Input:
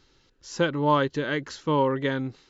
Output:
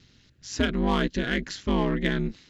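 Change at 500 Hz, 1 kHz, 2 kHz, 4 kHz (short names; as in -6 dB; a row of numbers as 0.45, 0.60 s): -4.5, -6.5, +0.5, +2.5 dB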